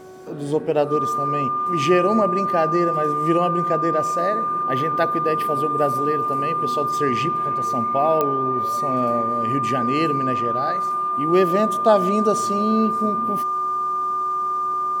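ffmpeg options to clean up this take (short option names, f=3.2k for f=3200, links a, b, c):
-af "adeclick=t=4,bandreject=f=373.2:t=h:w=4,bandreject=f=746.4:t=h:w=4,bandreject=f=1.1196k:t=h:w=4,bandreject=f=1.4928k:t=h:w=4,bandreject=f=1.2k:w=30"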